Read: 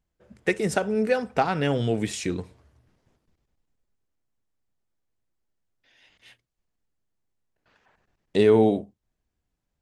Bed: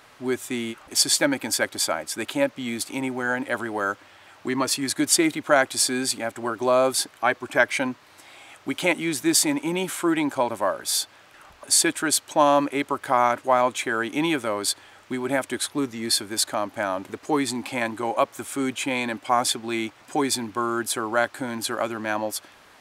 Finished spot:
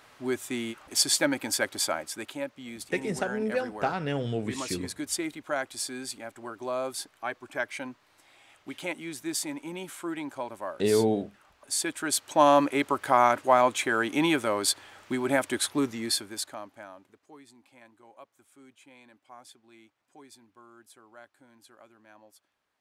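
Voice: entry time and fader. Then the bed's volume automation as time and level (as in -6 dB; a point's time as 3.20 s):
2.45 s, -6.0 dB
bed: 1.98 s -4 dB
2.41 s -12 dB
11.66 s -12 dB
12.47 s -1 dB
15.90 s -1 dB
17.35 s -28.5 dB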